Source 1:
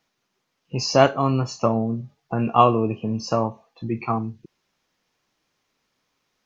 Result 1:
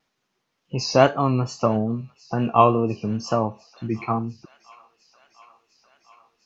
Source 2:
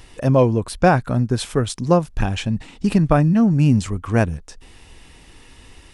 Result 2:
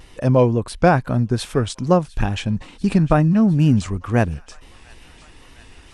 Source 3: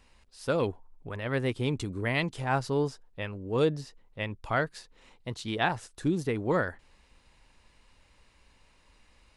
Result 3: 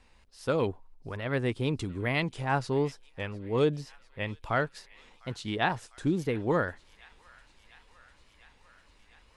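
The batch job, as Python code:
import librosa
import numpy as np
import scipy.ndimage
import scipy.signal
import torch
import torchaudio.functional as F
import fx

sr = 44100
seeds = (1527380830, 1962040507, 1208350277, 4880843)

p1 = fx.wow_flutter(x, sr, seeds[0], rate_hz=2.1, depth_cents=67.0)
p2 = fx.high_shelf(p1, sr, hz=6600.0, db=-4.5)
y = p2 + fx.echo_wet_highpass(p2, sr, ms=701, feedback_pct=76, hz=1500.0, wet_db=-21, dry=0)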